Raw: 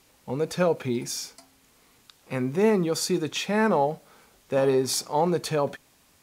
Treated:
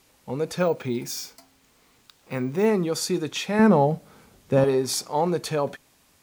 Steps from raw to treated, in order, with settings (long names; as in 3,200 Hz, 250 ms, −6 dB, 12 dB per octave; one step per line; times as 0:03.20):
0:00.58–0:02.66: bad sample-rate conversion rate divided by 2×, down filtered, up hold
0:03.59–0:04.64: parametric band 120 Hz +11.5 dB 2.9 octaves